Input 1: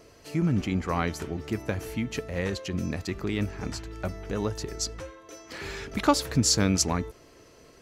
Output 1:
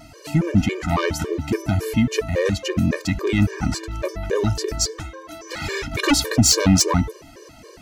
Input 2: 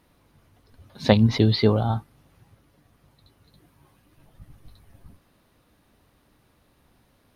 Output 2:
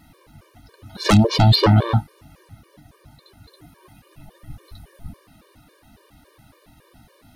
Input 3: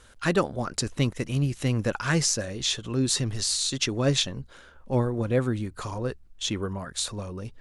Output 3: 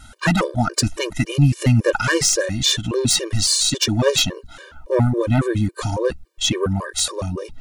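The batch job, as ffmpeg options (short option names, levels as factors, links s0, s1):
-af "aeval=exprs='0.891*sin(PI/2*5.62*val(0)/0.891)':c=same,afftfilt=real='re*gt(sin(2*PI*3.6*pts/sr)*(1-2*mod(floor(b*sr/1024/310),2)),0)':imag='im*gt(sin(2*PI*3.6*pts/sr)*(1-2*mod(floor(b*sr/1024/310),2)),0)':win_size=1024:overlap=0.75,volume=0.501"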